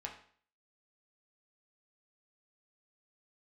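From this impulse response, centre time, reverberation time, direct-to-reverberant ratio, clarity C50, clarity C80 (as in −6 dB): 21 ms, 0.50 s, −0.5 dB, 8.0 dB, 12.0 dB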